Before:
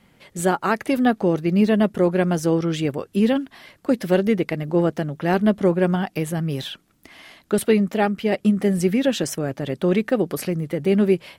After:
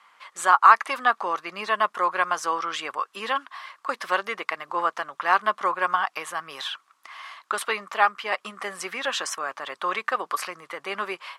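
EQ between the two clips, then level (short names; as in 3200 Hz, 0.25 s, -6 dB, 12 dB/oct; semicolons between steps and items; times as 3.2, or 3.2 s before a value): resonant high-pass 1100 Hz, resonance Q 6.4; LPF 8600 Hz 12 dB/oct; 0.0 dB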